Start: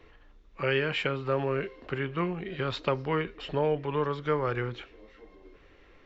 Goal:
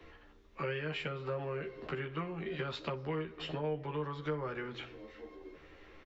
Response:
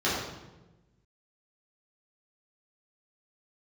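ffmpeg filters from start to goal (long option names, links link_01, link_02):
-filter_complex "[0:a]asplit=2[link_01][link_02];[1:a]atrim=start_sample=2205,afade=type=out:start_time=0.38:duration=0.01,atrim=end_sample=17199[link_03];[link_02][link_03]afir=irnorm=-1:irlink=0,volume=-32dB[link_04];[link_01][link_04]amix=inputs=2:normalize=0,acrossover=split=94|240[link_05][link_06][link_07];[link_05]acompressor=threshold=-58dB:ratio=4[link_08];[link_06]acompressor=threshold=-47dB:ratio=4[link_09];[link_07]acompressor=threshold=-40dB:ratio=4[link_10];[link_08][link_09][link_10]amix=inputs=3:normalize=0,aecho=1:1:13|61:0.631|0.15"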